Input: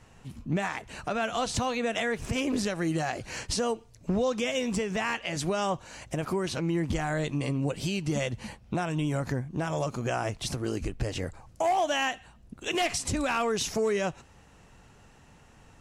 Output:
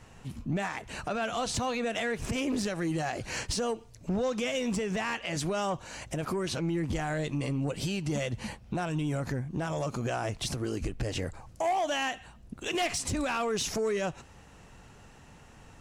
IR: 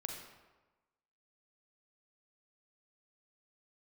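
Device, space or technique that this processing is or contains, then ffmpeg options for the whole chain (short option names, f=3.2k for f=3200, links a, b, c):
soft clipper into limiter: -af "asoftclip=type=tanh:threshold=-20.5dB,alimiter=level_in=2dB:limit=-24dB:level=0:latency=1:release=114,volume=-2dB,volume=2.5dB"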